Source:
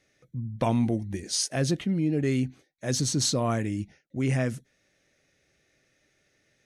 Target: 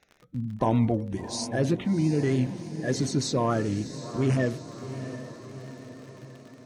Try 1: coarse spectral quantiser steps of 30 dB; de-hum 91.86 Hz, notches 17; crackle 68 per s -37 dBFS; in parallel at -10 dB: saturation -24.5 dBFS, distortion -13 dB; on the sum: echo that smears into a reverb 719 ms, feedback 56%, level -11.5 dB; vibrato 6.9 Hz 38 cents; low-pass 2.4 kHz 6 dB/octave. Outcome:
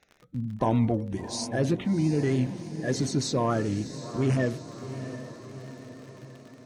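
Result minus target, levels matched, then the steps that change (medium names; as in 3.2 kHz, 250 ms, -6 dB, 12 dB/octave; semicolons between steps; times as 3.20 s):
saturation: distortion +12 dB
change: saturation -16 dBFS, distortion -24 dB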